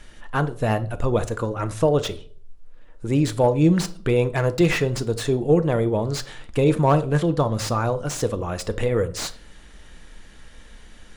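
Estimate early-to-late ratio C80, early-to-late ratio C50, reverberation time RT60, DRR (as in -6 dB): 23.5 dB, 17.5 dB, 0.50 s, 10.5 dB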